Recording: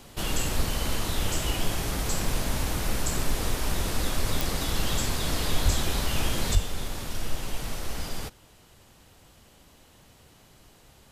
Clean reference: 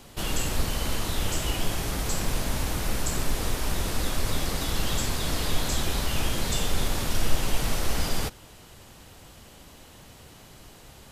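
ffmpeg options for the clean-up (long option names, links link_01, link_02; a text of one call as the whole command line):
ffmpeg -i in.wav -filter_complex "[0:a]adeclick=threshold=4,asplit=3[link_01][link_02][link_03];[link_01]afade=type=out:start_time=5.64:duration=0.02[link_04];[link_02]highpass=frequency=140:width=0.5412,highpass=frequency=140:width=1.3066,afade=type=in:start_time=5.64:duration=0.02,afade=type=out:start_time=5.76:duration=0.02[link_05];[link_03]afade=type=in:start_time=5.76:duration=0.02[link_06];[link_04][link_05][link_06]amix=inputs=3:normalize=0,asplit=3[link_07][link_08][link_09];[link_07]afade=type=out:start_time=6.53:duration=0.02[link_10];[link_08]highpass=frequency=140:width=0.5412,highpass=frequency=140:width=1.3066,afade=type=in:start_time=6.53:duration=0.02,afade=type=out:start_time=6.65:duration=0.02[link_11];[link_09]afade=type=in:start_time=6.65:duration=0.02[link_12];[link_10][link_11][link_12]amix=inputs=3:normalize=0,asetnsamples=nb_out_samples=441:pad=0,asendcmd='6.55 volume volume 6.5dB',volume=0dB" out.wav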